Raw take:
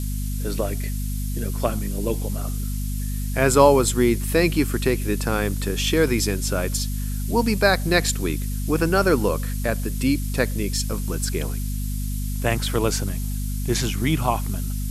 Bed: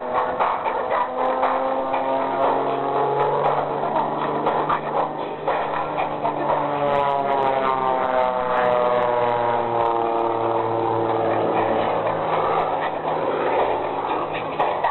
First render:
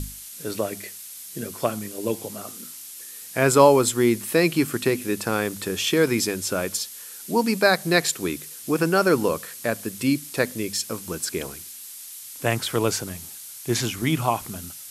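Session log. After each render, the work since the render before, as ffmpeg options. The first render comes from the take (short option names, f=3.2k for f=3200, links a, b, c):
-af "bandreject=f=50:t=h:w=6,bandreject=f=100:t=h:w=6,bandreject=f=150:t=h:w=6,bandreject=f=200:t=h:w=6,bandreject=f=250:t=h:w=6"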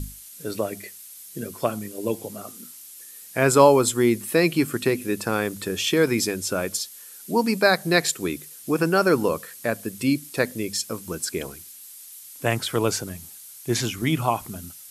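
-af "afftdn=nr=6:nf=-40"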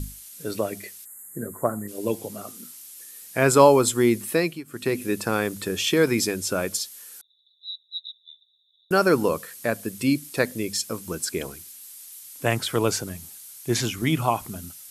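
-filter_complex "[0:a]asplit=3[a][b][c];[a]afade=t=out:st=1.04:d=0.02[d];[b]asuperstop=centerf=3800:order=20:qfactor=0.78,afade=t=in:st=1.04:d=0.02,afade=t=out:st=1.87:d=0.02[e];[c]afade=t=in:st=1.87:d=0.02[f];[d][e][f]amix=inputs=3:normalize=0,asettb=1/sr,asplit=3[g][h][i];[g]atrim=end=7.214[j];[h]atrim=start=7.21:end=8.91,asetpts=PTS-STARTPTS,afade=t=in:d=0.004:c=qsin,afade=t=out:st=1.696:d=0.004:c=qsin,asuperpass=centerf=3700:order=12:qfactor=7.9[k];[i]atrim=start=8.906[l];[j][k]acrossfade=d=0.004:c1=hsin:c2=qsin[m];[m][l]acrossfade=d=0.004:c1=qsin:c2=hsin,asplit=2[n][o];[n]atrim=end=4.64,asetpts=PTS-STARTPTS,afade=t=out:st=4.28:d=0.36:silence=0.0668344[p];[o]atrim=start=4.64,asetpts=PTS-STARTPTS,afade=t=in:d=0.36:silence=0.0668344[q];[p][q]concat=n=2:v=0:a=1"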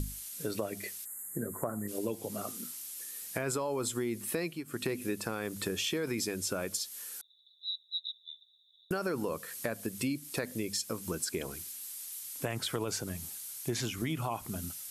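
-af "alimiter=limit=-13.5dB:level=0:latency=1:release=36,acompressor=threshold=-32dB:ratio=4"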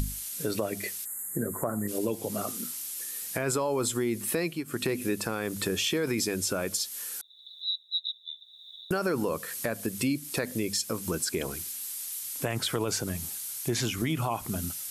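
-filter_complex "[0:a]asplit=2[a][b];[b]alimiter=level_in=2dB:limit=-24dB:level=0:latency=1:release=33,volume=-2dB,volume=0dB[c];[a][c]amix=inputs=2:normalize=0,acompressor=mode=upward:threshold=-35dB:ratio=2.5"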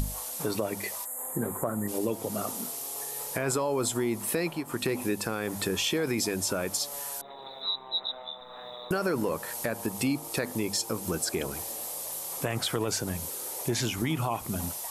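-filter_complex "[1:a]volume=-25.5dB[a];[0:a][a]amix=inputs=2:normalize=0"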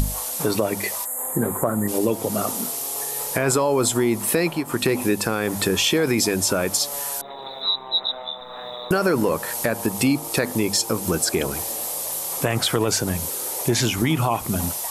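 -af "volume=8.5dB"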